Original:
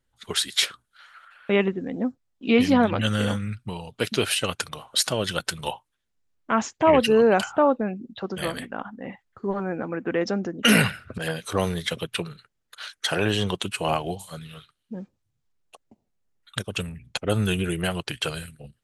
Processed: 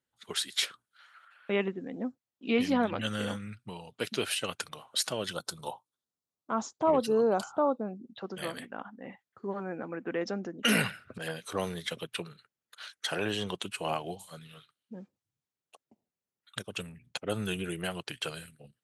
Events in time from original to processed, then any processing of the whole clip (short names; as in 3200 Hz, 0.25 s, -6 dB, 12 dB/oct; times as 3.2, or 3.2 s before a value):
5.33–8.05 band shelf 2200 Hz -13.5 dB 1.1 oct
whole clip: Bessel high-pass 160 Hz, order 2; gain -7.5 dB